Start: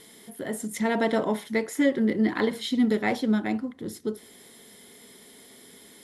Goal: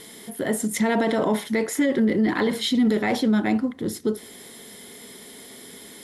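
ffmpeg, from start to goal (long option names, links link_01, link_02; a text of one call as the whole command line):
ffmpeg -i in.wav -af "alimiter=limit=-21dB:level=0:latency=1:release=12,volume=7.5dB" out.wav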